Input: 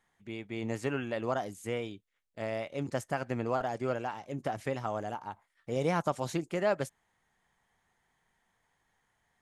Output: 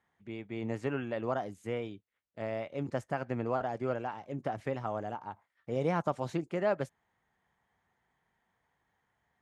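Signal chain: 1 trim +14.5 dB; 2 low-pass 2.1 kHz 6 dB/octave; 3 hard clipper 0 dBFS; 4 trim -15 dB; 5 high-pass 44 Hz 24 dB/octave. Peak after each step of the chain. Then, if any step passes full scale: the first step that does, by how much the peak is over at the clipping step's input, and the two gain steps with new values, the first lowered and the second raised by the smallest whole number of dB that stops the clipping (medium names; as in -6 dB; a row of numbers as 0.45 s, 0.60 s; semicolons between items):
-1.0 dBFS, -1.5 dBFS, -1.5 dBFS, -16.5 dBFS, -16.0 dBFS; nothing clips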